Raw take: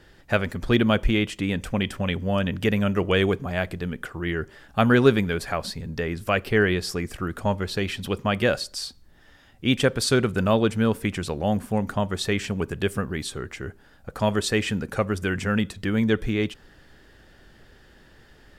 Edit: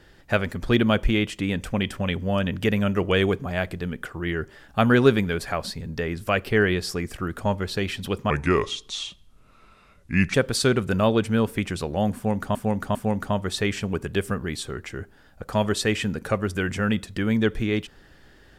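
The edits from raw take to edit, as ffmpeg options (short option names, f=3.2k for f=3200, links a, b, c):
-filter_complex "[0:a]asplit=5[a][b][c][d][e];[a]atrim=end=8.304[f];[b]atrim=start=8.3:end=9.81,asetpts=PTS-STARTPTS,asetrate=32634,aresample=44100[g];[c]atrim=start=9.806:end=12.022[h];[d]atrim=start=11.618:end=12.022[i];[e]atrim=start=11.618[j];[f][g]acrossfade=d=0.004:c1=hsin:c2=hsin[k];[k][h]acrossfade=d=0.004:c1=hsin:c2=hsin[l];[l][i]acrossfade=d=0.004:c1=hsin:c2=hsin[m];[m][j]acrossfade=d=0.004:c1=hsin:c2=hsin"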